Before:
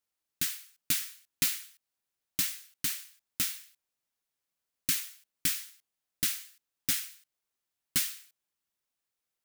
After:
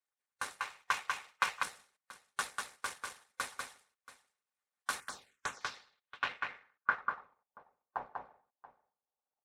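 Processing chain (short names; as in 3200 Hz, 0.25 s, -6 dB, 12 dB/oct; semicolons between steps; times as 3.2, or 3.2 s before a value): median filter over 25 samples; ring modulator 1300 Hz; low shelf 280 Hz -9 dB; on a send: tapped delay 0.194/0.681 s -3.5/-17.5 dB; on the sum: low-pass sweep 9400 Hz -> 800 Hz, 5.1–7.55; 0.6–1.63 fifteen-band EQ 250 Hz -8 dB, 1000 Hz +6 dB, 2500 Hz +9 dB, 10000 Hz -8 dB; harmonic-percussive split harmonic -14 dB; notch comb 330 Hz; 5–5.61 envelope phaser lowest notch 560 Hz, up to 4900 Hz, full sweep at -43 dBFS; gain +9.5 dB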